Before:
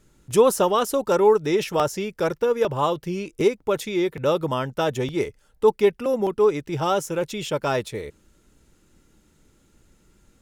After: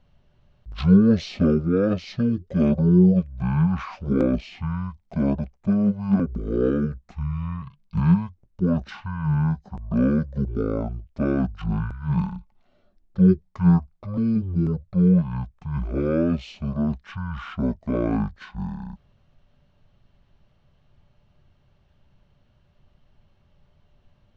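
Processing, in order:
high-shelf EQ 4,200 Hz −10.5 dB
wrong playback speed 78 rpm record played at 33 rpm
high-shelf EQ 11,000 Hz −10 dB

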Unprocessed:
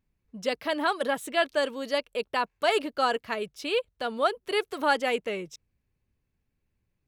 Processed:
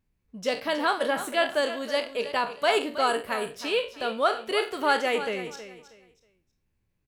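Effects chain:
peak hold with a decay on every bin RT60 0.32 s
0:03.07–0:03.51: high shelf with overshoot 7,400 Hz +7 dB, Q 3
repeating echo 319 ms, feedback 25%, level −12.5 dB

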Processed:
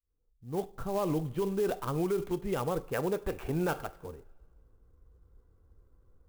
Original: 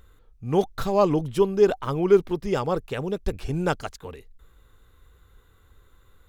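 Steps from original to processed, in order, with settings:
fade in at the beginning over 1.27 s
low-pass that shuts in the quiet parts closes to 610 Hz, open at −16 dBFS
0:02.94–0:03.79: mid-hump overdrive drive 16 dB, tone 2,300 Hz, clips at −9.5 dBFS
convolution reverb, pre-delay 3 ms, DRR 13 dB
brickwall limiter −17 dBFS, peak gain reduction 10.5 dB
converter with an unsteady clock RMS 0.032 ms
level −5 dB

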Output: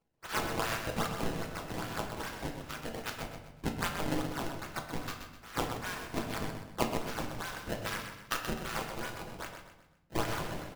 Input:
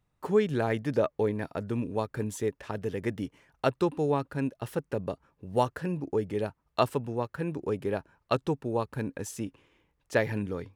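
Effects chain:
spectral envelope flattened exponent 0.1
four-pole ladder high-pass 840 Hz, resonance 30%
parametric band 1,400 Hz +10 dB 0.77 octaves
sample-and-hold swept by an LFO 22×, swing 160% 2.5 Hz
repeating echo 127 ms, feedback 39%, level −8 dB
rectangular room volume 220 cubic metres, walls mixed, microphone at 0.68 metres
level −4.5 dB

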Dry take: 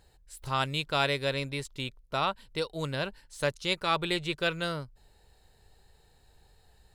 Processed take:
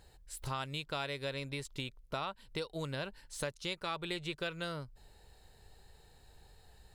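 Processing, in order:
downward compressor 4 to 1, threshold −38 dBFS, peak gain reduction 14 dB
level +1.5 dB

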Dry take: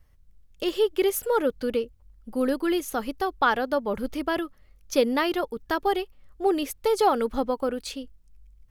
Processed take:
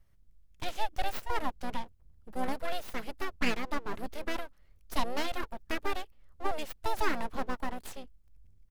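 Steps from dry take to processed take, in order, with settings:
full-wave rectification
pitch-shifted copies added −5 semitones −9 dB
level −6.5 dB

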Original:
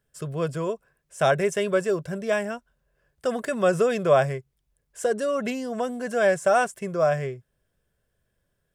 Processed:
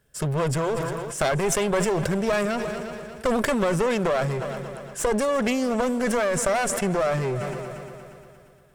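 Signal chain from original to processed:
downward compressor 10 to 1, threshold −26 dBFS, peak gain reduction 13.5 dB
asymmetric clip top −38.5 dBFS
echo machine with several playback heads 117 ms, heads second and third, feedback 56%, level −20 dB
level that may fall only so fast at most 23 dB per second
level +9 dB

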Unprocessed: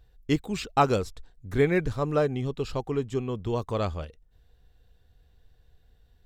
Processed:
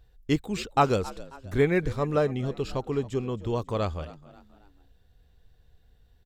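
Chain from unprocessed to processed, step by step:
echo with shifted repeats 270 ms, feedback 43%, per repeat +66 Hz, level −19 dB

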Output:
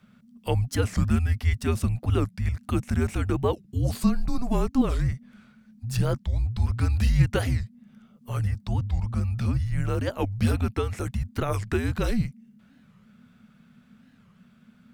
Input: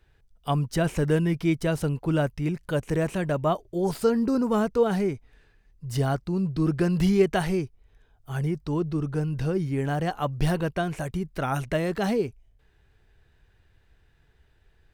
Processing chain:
dynamic equaliser 1,200 Hz, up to −3 dB, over −38 dBFS, Q 1.3
in parallel at −2.5 dB: downward compressor, threshold −38 dBFS, peak gain reduction 21 dB
on the sum: frequency shifter −250 Hz
wow of a warped record 45 rpm, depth 250 cents

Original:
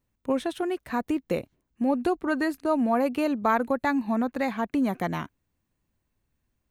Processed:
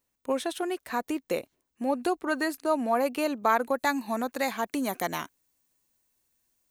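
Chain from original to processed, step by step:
bass and treble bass −13 dB, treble +7 dB, from 0:03.73 treble +14 dB

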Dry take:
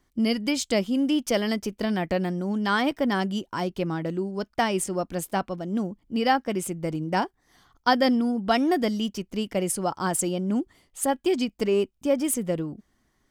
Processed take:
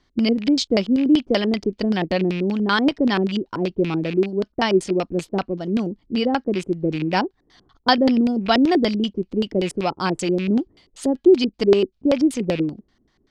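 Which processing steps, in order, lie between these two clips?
loose part that buzzes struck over −34 dBFS, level −29 dBFS
auto-filter low-pass square 5.2 Hz 380–4,300 Hz
level +3.5 dB

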